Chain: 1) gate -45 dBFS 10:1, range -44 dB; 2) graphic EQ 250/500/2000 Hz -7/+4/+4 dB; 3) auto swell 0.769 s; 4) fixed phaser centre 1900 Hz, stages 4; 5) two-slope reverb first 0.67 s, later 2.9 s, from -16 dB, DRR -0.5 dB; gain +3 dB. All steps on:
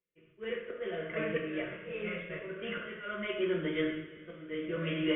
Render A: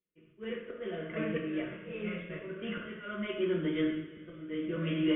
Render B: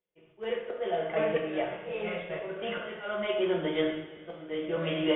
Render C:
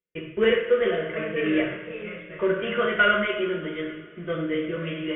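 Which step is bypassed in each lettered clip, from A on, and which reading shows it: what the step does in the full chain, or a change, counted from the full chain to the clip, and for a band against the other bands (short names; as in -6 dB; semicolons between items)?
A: 2, 250 Hz band +5.0 dB; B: 4, 1 kHz band +7.5 dB; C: 3, crest factor change -1.5 dB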